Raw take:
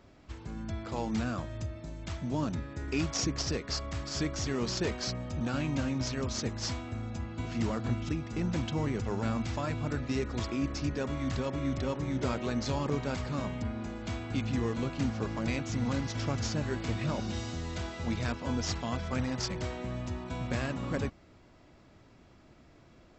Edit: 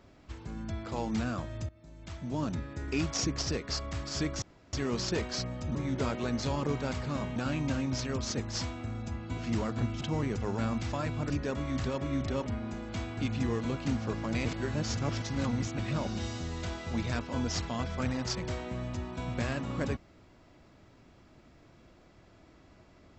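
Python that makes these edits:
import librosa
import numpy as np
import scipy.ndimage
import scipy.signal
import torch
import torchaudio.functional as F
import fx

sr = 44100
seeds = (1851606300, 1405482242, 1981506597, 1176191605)

y = fx.edit(x, sr, fx.fade_in_from(start_s=1.69, length_s=0.83, floor_db=-19.0),
    fx.insert_room_tone(at_s=4.42, length_s=0.31),
    fx.cut(start_s=8.1, length_s=0.56),
    fx.cut(start_s=9.94, length_s=0.88),
    fx.move(start_s=11.98, length_s=1.61, to_s=5.44),
    fx.reverse_span(start_s=15.58, length_s=1.34), tone=tone)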